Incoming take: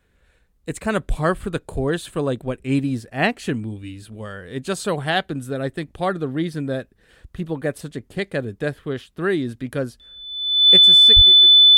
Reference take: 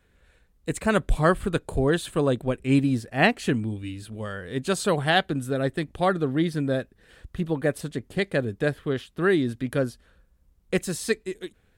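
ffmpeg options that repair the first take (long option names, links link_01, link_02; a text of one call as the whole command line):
ffmpeg -i in.wav -filter_complex "[0:a]bandreject=frequency=3500:width=30,asplit=3[link_01][link_02][link_03];[link_01]afade=type=out:start_time=11.15:duration=0.02[link_04];[link_02]highpass=frequency=140:width=0.5412,highpass=frequency=140:width=1.3066,afade=type=in:start_time=11.15:duration=0.02,afade=type=out:start_time=11.27:duration=0.02[link_05];[link_03]afade=type=in:start_time=11.27:duration=0.02[link_06];[link_04][link_05][link_06]amix=inputs=3:normalize=0,asetnsamples=nb_out_samples=441:pad=0,asendcmd='10.76 volume volume 5dB',volume=0dB" out.wav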